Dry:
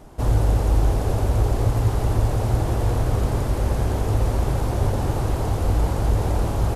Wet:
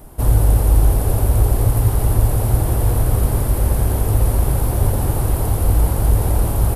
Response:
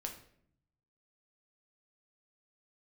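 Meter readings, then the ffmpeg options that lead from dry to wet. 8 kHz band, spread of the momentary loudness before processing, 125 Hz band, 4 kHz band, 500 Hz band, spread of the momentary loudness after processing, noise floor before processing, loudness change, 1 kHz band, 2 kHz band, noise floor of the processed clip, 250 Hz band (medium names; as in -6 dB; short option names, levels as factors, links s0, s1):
+11.0 dB, 3 LU, +4.5 dB, +1.0 dB, +1.5 dB, 4 LU, -25 dBFS, +5.0 dB, +1.0 dB, +1.0 dB, -21 dBFS, +2.0 dB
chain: -af "lowshelf=f=110:g=6,aexciter=amount=8.2:drive=2.6:freq=9000,volume=1.12"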